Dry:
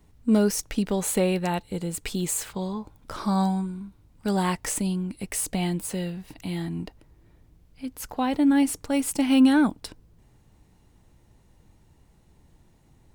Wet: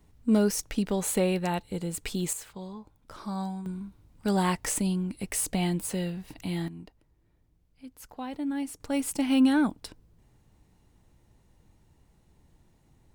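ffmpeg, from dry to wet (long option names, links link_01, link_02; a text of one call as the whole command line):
ffmpeg -i in.wav -af "asetnsamples=nb_out_samples=441:pad=0,asendcmd='2.33 volume volume -10dB;3.66 volume volume -1dB;6.68 volume volume -11.5dB;8.8 volume volume -4dB',volume=-2.5dB" out.wav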